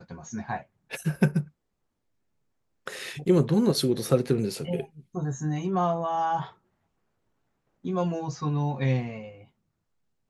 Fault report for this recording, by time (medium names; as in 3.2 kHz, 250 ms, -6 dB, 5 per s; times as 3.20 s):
2.99 s: dropout 2.7 ms